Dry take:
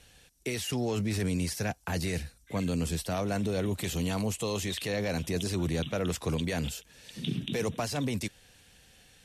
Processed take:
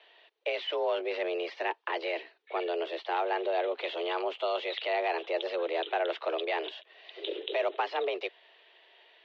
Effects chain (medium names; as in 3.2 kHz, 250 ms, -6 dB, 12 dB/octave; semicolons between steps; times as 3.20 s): mistuned SSB +170 Hz 250–3400 Hz; trim +3 dB